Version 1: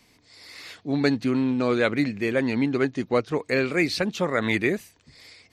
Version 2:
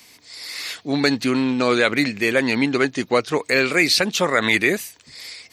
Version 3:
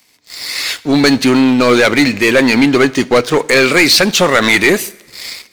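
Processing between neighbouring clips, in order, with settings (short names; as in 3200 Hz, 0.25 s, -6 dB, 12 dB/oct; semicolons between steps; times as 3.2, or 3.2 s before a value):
tilt +2.5 dB/oct; in parallel at +3 dB: limiter -14.5 dBFS, peak gain reduction 8.5 dB
sample leveller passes 3; two-slope reverb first 0.68 s, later 2.5 s, from -18 dB, DRR 17 dB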